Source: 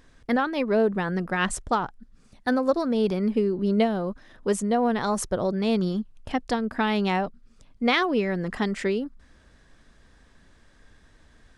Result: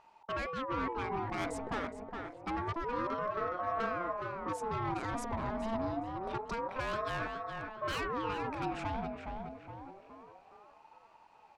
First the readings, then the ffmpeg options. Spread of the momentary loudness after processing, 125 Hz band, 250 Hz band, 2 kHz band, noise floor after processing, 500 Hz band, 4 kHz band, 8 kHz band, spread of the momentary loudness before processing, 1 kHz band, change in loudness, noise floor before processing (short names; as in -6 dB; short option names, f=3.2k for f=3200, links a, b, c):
9 LU, -10.0 dB, -15.5 dB, -10.0 dB, -61 dBFS, -12.5 dB, -13.0 dB, -16.0 dB, 8 LU, -6.0 dB, -11.5 dB, -57 dBFS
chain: -filter_complex "[0:a]aemphasis=mode=reproduction:type=50fm,asoftclip=type=tanh:threshold=-25dB,asplit=2[a][b];[b]adelay=417,lowpass=f=2.4k:p=1,volume=-4.5dB,asplit=2[c][d];[d]adelay=417,lowpass=f=2.4k:p=1,volume=0.48,asplit=2[e][f];[f]adelay=417,lowpass=f=2.4k:p=1,volume=0.48,asplit=2[g][h];[h]adelay=417,lowpass=f=2.4k:p=1,volume=0.48,asplit=2[i][j];[j]adelay=417,lowpass=f=2.4k:p=1,volume=0.48,asplit=2[k][l];[l]adelay=417,lowpass=f=2.4k:p=1,volume=0.48[m];[a][c][e][g][i][k][m]amix=inputs=7:normalize=0,aeval=exprs='val(0)*sin(2*PI*670*n/s+670*0.35/0.27*sin(2*PI*0.27*n/s))':c=same,volume=-5dB"